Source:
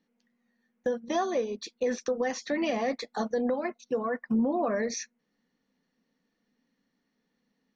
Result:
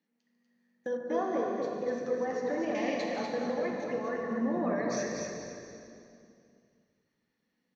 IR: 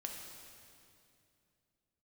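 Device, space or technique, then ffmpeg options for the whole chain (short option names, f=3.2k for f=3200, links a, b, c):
stadium PA: -filter_complex "[0:a]highpass=150,equalizer=f=2.1k:t=o:w=0.77:g=3,aecho=1:1:145.8|242:0.282|0.562[a];[1:a]atrim=start_sample=2205[b];[a][b]afir=irnorm=-1:irlink=0,asettb=1/sr,asplit=3[c][d][e];[c]atrim=end=0.974[f];[d]atrim=start=0.97:end=2.75,asetpts=PTS-STARTPTS,afade=t=in:d=0.004:c=qsin,afade=t=out:st=1.776:d=0.004:c=qsin,highshelf=f=1.9k:t=q:w=1.5:g=-9.5[g];[e]atrim=start=2.746[h];[f][g]acrossfade=d=0.004:c1=hsin:c2=qsin[i];[i][h]acrossfade=d=0.004:c1=qsin:c2=hsin,asplit=5[j][k][l][m][n];[k]adelay=250,afreqshift=-48,volume=-11dB[o];[l]adelay=500,afreqshift=-96,volume=-20.4dB[p];[m]adelay=750,afreqshift=-144,volume=-29.7dB[q];[n]adelay=1000,afreqshift=-192,volume=-39.1dB[r];[j][o][p][q][r]amix=inputs=5:normalize=0,volume=-3dB"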